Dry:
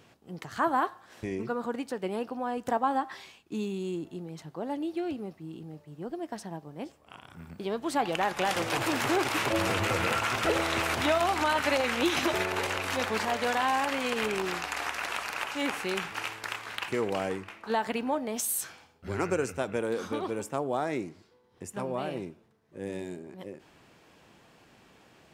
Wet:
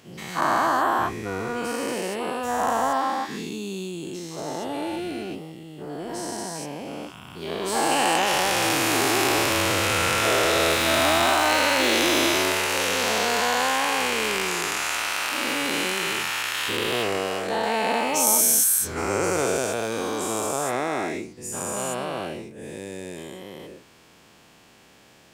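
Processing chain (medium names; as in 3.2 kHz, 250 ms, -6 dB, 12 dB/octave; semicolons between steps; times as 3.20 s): every event in the spectrogram widened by 480 ms; treble shelf 3.4 kHz +8.5 dB; 10.70–12.22 s: small samples zeroed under -30 dBFS; trim -3 dB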